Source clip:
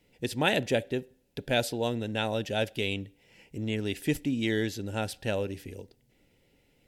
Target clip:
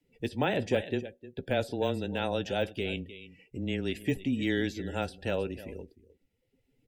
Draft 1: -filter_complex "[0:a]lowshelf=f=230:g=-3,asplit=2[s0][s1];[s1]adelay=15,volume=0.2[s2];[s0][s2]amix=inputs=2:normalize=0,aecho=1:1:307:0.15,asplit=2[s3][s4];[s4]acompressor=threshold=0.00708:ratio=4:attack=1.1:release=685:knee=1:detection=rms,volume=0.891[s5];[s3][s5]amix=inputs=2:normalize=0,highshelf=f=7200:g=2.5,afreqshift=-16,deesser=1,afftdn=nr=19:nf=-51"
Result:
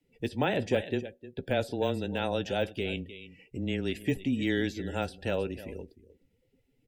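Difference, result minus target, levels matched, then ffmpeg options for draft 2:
compression: peak gain reduction -8 dB
-filter_complex "[0:a]lowshelf=f=230:g=-3,asplit=2[s0][s1];[s1]adelay=15,volume=0.2[s2];[s0][s2]amix=inputs=2:normalize=0,aecho=1:1:307:0.15,asplit=2[s3][s4];[s4]acompressor=threshold=0.00211:ratio=4:attack=1.1:release=685:knee=1:detection=rms,volume=0.891[s5];[s3][s5]amix=inputs=2:normalize=0,highshelf=f=7200:g=2.5,afreqshift=-16,deesser=1,afftdn=nr=19:nf=-51"

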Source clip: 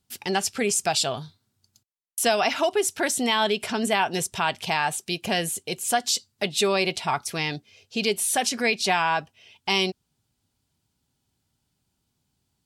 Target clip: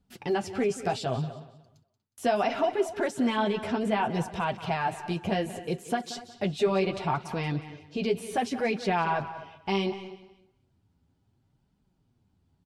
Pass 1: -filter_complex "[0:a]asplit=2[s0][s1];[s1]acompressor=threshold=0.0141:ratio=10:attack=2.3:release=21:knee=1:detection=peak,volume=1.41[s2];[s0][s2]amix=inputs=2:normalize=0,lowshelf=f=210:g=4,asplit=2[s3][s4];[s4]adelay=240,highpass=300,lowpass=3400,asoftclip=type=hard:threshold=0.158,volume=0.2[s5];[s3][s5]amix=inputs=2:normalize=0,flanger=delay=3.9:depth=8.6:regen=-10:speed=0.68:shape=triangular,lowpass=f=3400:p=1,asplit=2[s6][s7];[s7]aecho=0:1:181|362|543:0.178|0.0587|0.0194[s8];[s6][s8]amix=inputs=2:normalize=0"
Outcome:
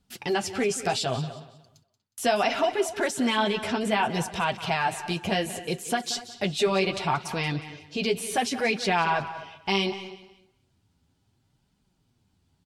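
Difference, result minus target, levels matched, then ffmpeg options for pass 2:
4 kHz band +6.0 dB
-filter_complex "[0:a]asplit=2[s0][s1];[s1]acompressor=threshold=0.0141:ratio=10:attack=2.3:release=21:knee=1:detection=peak,volume=1.41[s2];[s0][s2]amix=inputs=2:normalize=0,lowshelf=f=210:g=4,asplit=2[s3][s4];[s4]adelay=240,highpass=300,lowpass=3400,asoftclip=type=hard:threshold=0.158,volume=0.2[s5];[s3][s5]amix=inputs=2:normalize=0,flanger=delay=3.9:depth=8.6:regen=-10:speed=0.68:shape=triangular,lowpass=f=940:p=1,asplit=2[s6][s7];[s7]aecho=0:1:181|362|543:0.178|0.0587|0.0194[s8];[s6][s8]amix=inputs=2:normalize=0"

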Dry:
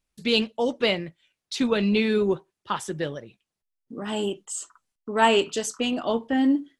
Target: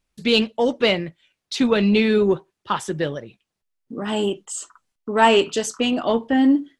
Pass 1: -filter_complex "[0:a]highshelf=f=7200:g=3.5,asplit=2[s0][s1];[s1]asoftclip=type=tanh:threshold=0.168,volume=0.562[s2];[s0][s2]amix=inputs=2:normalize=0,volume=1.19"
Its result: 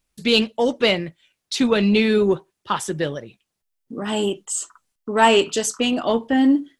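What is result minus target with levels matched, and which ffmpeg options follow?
8 kHz band +4.5 dB
-filter_complex "[0:a]highshelf=f=7200:g=-6,asplit=2[s0][s1];[s1]asoftclip=type=tanh:threshold=0.168,volume=0.562[s2];[s0][s2]amix=inputs=2:normalize=0,volume=1.19"

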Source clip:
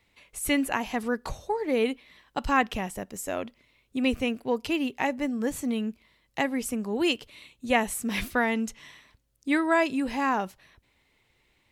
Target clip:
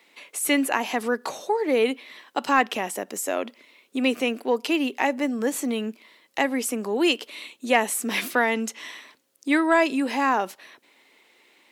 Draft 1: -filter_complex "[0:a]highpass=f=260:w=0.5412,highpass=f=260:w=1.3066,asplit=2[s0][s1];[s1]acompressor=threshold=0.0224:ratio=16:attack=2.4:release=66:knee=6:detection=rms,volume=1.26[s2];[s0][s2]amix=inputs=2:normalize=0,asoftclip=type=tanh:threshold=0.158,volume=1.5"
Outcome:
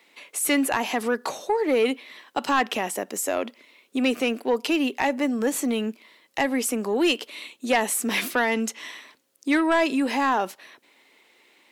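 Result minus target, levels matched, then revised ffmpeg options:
saturation: distortion +15 dB; compression: peak gain reduction -6.5 dB
-filter_complex "[0:a]highpass=f=260:w=0.5412,highpass=f=260:w=1.3066,asplit=2[s0][s1];[s1]acompressor=threshold=0.01:ratio=16:attack=2.4:release=66:knee=6:detection=rms,volume=1.26[s2];[s0][s2]amix=inputs=2:normalize=0,asoftclip=type=tanh:threshold=0.501,volume=1.5"

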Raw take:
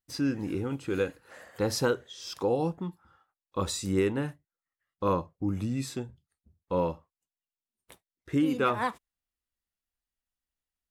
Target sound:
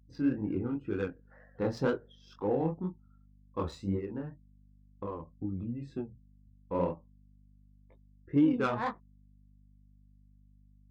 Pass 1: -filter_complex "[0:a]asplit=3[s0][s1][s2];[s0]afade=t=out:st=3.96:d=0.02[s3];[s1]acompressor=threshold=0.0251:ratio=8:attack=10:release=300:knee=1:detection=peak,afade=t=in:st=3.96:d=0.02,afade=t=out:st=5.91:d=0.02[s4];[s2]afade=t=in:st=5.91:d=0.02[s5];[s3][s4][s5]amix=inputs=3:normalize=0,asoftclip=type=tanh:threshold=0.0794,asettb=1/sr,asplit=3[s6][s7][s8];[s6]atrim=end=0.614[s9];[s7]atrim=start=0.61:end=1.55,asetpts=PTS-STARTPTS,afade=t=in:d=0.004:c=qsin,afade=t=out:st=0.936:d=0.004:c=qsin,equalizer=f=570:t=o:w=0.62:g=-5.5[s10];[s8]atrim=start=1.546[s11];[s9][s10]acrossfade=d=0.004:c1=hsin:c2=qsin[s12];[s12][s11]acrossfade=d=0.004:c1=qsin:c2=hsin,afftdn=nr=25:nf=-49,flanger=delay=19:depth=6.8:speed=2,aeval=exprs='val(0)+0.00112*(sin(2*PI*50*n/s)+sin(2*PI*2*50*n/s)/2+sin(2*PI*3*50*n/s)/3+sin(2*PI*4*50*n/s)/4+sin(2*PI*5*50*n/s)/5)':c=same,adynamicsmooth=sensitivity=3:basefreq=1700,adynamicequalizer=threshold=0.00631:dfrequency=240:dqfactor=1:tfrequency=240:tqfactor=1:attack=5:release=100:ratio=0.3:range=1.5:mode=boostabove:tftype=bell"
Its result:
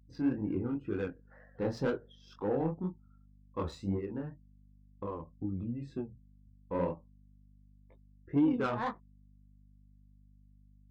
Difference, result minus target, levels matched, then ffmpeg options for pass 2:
saturation: distortion +15 dB
-filter_complex "[0:a]asplit=3[s0][s1][s2];[s0]afade=t=out:st=3.96:d=0.02[s3];[s1]acompressor=threshold=0.0251:ratio=8:attack=10:release=300:knee=1:detection=peak,afade=t=in:st=3.96:d=0.02,afade=t=out:st=5.91:d=0.02[s4];[s2]afade=t=in:st=5.91:d=0.02[s5];[s3][s4][s5]amix=inputs=3:normalize=0,asoftclip=type=tanh:threshold=0.251,asettb=1/sr,asplit=3[s6][s7][s8];[s6]atrim=end=0.614[s9];[s7]atrim=start=0.61:end=1.55,asetpts=PTS-STARTPTS,afade=t=in:d=0.004:c=qsin,afade=t=out:st=0.936:d=0.004:c=qsin,equalizer=f=570:t=o:w=0.62:g=-5.5[s10];[s8]atrim=start=1.546[s11];[s9][s10]acrossfade=d=0.004:c1=hsin:c2=qsin[s12];[s12][s11]acrossfade=d=0.004:c1=qsin:c2=hsin,afftdn=nr=25:nf=-49,flanger=delay=19:depth=6.8:speed=2,aeval=exprs='val(0)+0.00112*(sin(2*PI*50*n/s)+sin(2*PI*2*50*n/s)/2+sin(2*PI*3*50*n/s)/3+sin(2*PI*4*50*n/s)/4+sin(2*PI*5*50*n/s)/5)':c=same,adynamicsmooth=sensitivity=3:basefreq=1700,adynamicequalizer=threshold=0.00631:dfrequency=240:dqfactor=1:tfrequency=240:tqfactor=1:attack=5:release=100:ratio=0.3:range=1.5:mode=boostabove:tftype=bell"

